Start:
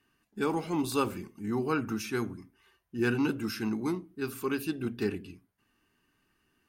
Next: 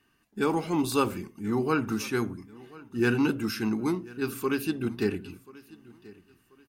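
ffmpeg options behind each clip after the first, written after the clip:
ffmpeg -i in.wav -af "aecho=1:1:1035|2070:0.0841|0.0269,volume=3.5dB" out.wav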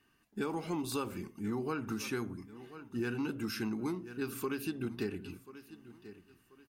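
ffmpeg -i in.wav -af "acompressor=threshold=-30dB:ratio=6,volume=-2.5dB" out.wav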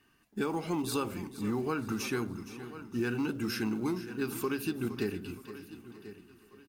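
ffmpeg -i in.wav -filter_complex "[0:a]asplit=2[link_01][link_02];[link_02]acrusher=bits=5:mode=log:mix=0:aa=0.000001,volume=-6.5dB[link_03];[link_01][link_03]amix=inputs=2:normalize=0,aecho=1:1:467|934|1401|1868:0.2|0.0778|0.0303|0.0118" out.wav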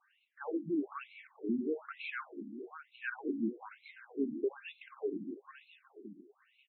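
ffmpeg -i in.wav -filter_complex "[0:a]aexciter=amount=2.1:drive=9.2:freq=5800,acrossover=split=3000[link_01][link_02];[link_02]acompressor=threshold=-45dB:ratio=4:attack=1:release=60[link_03];[link_01][link_03]amix=inputs=2:normalize=0,afftfilt=real='re*between(b*sr/1024,240*pow(3000/240,0.5+0.5*sin(2*PI*1.1*pts/sr))/1.41,240*pow(3000/240,0.5+0.5*sin(2*PI*1.1*pts/sr))*1.41)':imag='im*between(b*sr/1024,240*pow(3000/240,0.5+0.5*sin(2*PI*1.1*pts/sr))/1.41,240*pow(3000/240,0.5+0.5*sin(2*PI*1.1*pts/sr))*1.41)':win_size=1024:overlap=0.75,volume=1.5dB" out.wav

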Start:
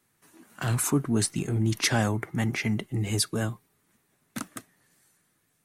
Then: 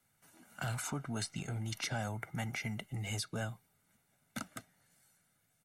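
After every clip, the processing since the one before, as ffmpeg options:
ffmpeg -i in.wav -filter_complex "[0:a]aecho=1:1:1.4:0.57,acrossover=split=530|7000[link_01][link_02][link_03];[link_01]acompressor=threshold=-33dB:ratio=4[link_04];[link_02]acompressor=threshold=-33dB:ratio=4[link_05];[link_03]acompressor=threshold=-47dB:ratio=4[link_06];[link_04][link_05][link_06]amix=inputs=3:normalize=0,volume=-5.5dB" out.wav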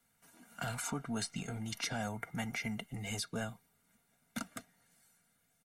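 ffmpeg -i in.wav -af "aecho=1:1:4.3:0.43" out.wav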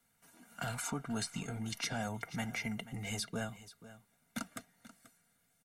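ffmpeg -i in.wav -af "aecho=1:1:485:0.158" out.wav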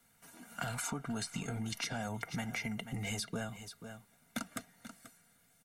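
ffmpeg -i in.wav -af "acompressor=threshold=-41dB:ratio=6,volume=6dB" out.wav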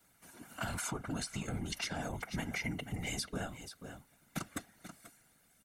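ffmpeg -i in.wav -af "afftfilt=real='hypot(re,im)*cos(2*PI*random(0))':imag='hypot(re,im)*sin(2*PI*random(1))':win_size=512:overlap=0.75,volume=6dB" out.wav

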